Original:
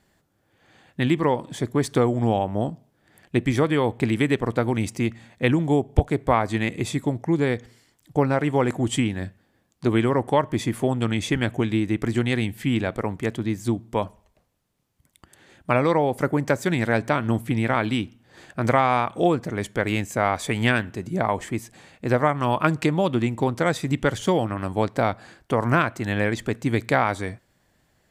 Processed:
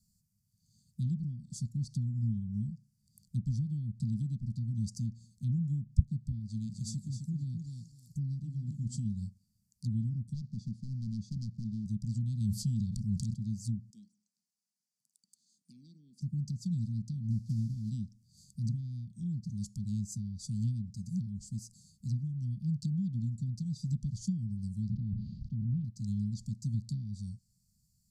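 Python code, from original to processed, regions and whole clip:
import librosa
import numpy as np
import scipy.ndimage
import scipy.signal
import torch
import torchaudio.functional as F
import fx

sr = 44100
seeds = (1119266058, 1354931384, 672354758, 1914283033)

y = fx.chain(x, sr, fx.low_shelf(hz=200.0, db=-3.5),
    fx.echo_feedback(ms=260, feedback_pct=18, wet_db=-6), at=(6.39, 9.05))
y = fx.chain(y, sr, fx.delta_hold(step_db=-40.0),
    fx.bandpass_edges(low_hz=110.0, high_hz=2200.0),
    fx.clip_hard(threshold_db=-20.0), at=(10.34, 11.86))
y = fx.chain(y, sr, fx.high_shelf(hz=2200.0, db=9.5),
    fx.notch(hz=280.0, q=5.2),
    fx.env_flatten(amount_pct=70), at=(12.4, 13.34))
y = fx.chain(y, sr, fx.highpass(hz=300.0, slope=24),
    fx.air_absorb(metres=53.0),
    fx.echo_bbd(ms=76, stages=1024, feedback_pct=40, wet_db=-19), at=(13.9, 16.22))
y = fx.chain(y, sr, fx.lowpass(hz=3700.0, slope=12),
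    fx.mod_noise(seeds[0], snr_db=21), at=(17.3, 17.9))
y = fx.spec_flatten(y, sr, power=0.66, at=(24.88, 25.84), fade=0.02)
y = fx.lowpass(y, sr, hz=2200.0, slope=24, at=(24.88, 25.84), fade=0.02)
y = fx.sustainer(y, sr, db_per_s=30.0, at=(24.88, 25.84), fade=0.02)
y = fx.env_lowpass_down(y, sr, base_hz=2300.0, full_db=-17.0)
y = scipy.signal.sosfilt(scipy.signal.cheby1(5, 1.0, [210.0, 4600.0], 'bandstop', fs=sr, output='sos'), y)
y = fx.high_shelf(y, sr, hz=4700.0, db=4.5)
y = y * 10.0 ** (-5.5 / 20.0)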